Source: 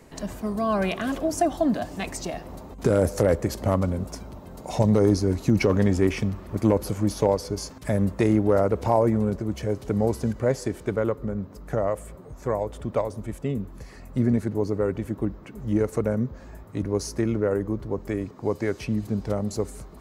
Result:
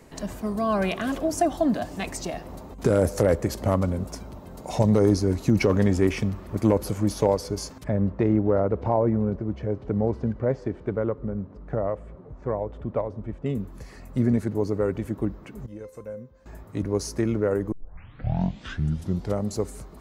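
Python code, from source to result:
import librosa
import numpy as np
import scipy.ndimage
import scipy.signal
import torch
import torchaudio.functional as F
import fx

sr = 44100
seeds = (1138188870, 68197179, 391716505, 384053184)

y = fx.spacing_loss(x, sr, db_at_10k=34, at=(7.84, 13.46))
y = fx.comb_fb(y, sr, f0_hz=520.0, decay_s=0.22, harmonics='all', damping=0.0, mix_pct=90, at=(15.66, 16.46))
y = fx.edit(y, sr, fx.tape_start(start_s=17.72, length_s=1.63), tone=tone)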